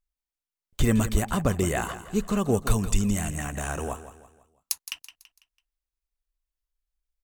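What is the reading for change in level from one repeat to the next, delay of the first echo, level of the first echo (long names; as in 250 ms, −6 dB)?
−8.0 dB, 166 ms, −13.0 dB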